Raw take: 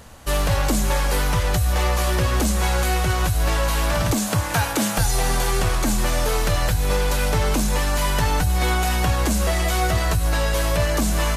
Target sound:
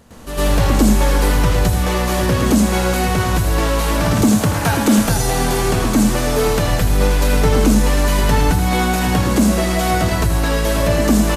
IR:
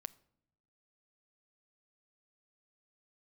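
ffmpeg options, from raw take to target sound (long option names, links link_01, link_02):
-filter_complex "[0:a]equalizer=frequency=270:width=0.87:gain=9,aecho=1:1:80:0.355,asplit=2[link_01][link_02];[1:a]atrim=start_sample=2205,asetrate=66150,aresample=44100,adelay=107[link_03];[link_02][link_03]afir=irnorm=-1:irlink=0,volume=17dB[link_04];[link_01][link_04]amix=inputs=2:normalize=0,volume=-7.5dB"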